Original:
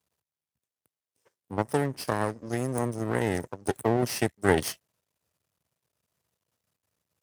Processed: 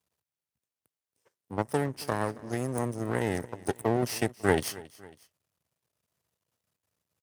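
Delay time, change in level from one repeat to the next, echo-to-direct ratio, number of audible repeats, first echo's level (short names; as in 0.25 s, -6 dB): 0.274 s, -5.0 dB, -19.5 dB, 2, -20.5 dB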